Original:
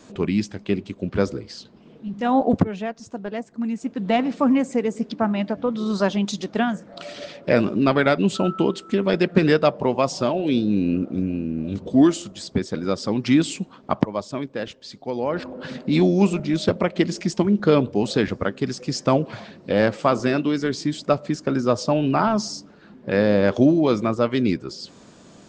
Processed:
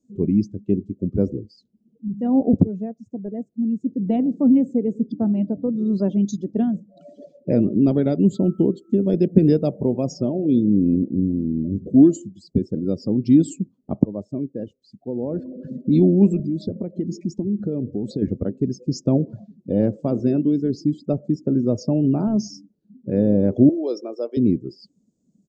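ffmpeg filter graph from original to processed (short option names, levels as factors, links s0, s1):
-filter_complex "[0:a]asettb=1/sr,asplit=3[s0][s1][s2];[s0]atrim=end=8.204[s3];[s1]atrim=start=8.2:end=10.14,asetpts=PTS-STARTPTS,afade=t=in:d=0.004:c=qsin,afade=t=out:st=1.936:d=0.004:c=qsin,lowshelf=f=87:g=3.5,acrusher=bits=7:mode=log:mix=0:aa=0.000001[s4];[s2]atrim=start=10.136[s5];[s3][s4]acrossfade=d=0.004:c1=hsin:c2=qsin[s6];[s6][s5]acrossfade=d=0.004:c1=qsin:c2=hsin,asettb=1/sr,asplit=3[s7][s8][s9];[s7]atrim=end=16.394[s10];[s8]atrim=start=16.39:end=18.22,asetpts=PTS-STARTPTS,afade=t=in:d=0.004:c=qsin,afade=t=out:st=1.826:d=0.004:c=qsin,bandreject=f=1100:w=21,acompressor=threshold=0.0631:ratio=3:attack=3.2:release=140:knee=1:detection=peak[s11];[s9]atrim=start=18.216[s12];[s10][s11]acrossfade=d=0.004:c1=hsin:c2=qsin[s13];[s13][s12]acrossfade=d=0.004:c1=qsin:c2=hsin,asettb=1/sr,asplit=3[s14][s15][s16];[s14]atrim=end=23.694[s17];[s15]atrim=start=23.69:end=24.37,asetpts=PTS-STARTPTS,afade=t=in:d=0.004:c=qsin,afade=t=out:st=0.676:d=0.004:c=qsin,highpass=f=410:w=0.5412,highpass=f=410:w=1.3066,equalizer=f=5400:w=5.5:g=14[s18];[s16]atrim=start=24.366[s19];[s17][s18]acrossfade=d=0.004:c1=hsin:c2=qsin[s20];[s20][s19]acrossfade=d=0.004:c1=qsin:c2=hsin,afftdn=nr=26:nf=-30,firequalizer=gain_entry='entry(290,0);entry(1100,-26);entry(1800,-26);entry(6600,-2)':delay=0.05:min_phase=1,volume=1.5"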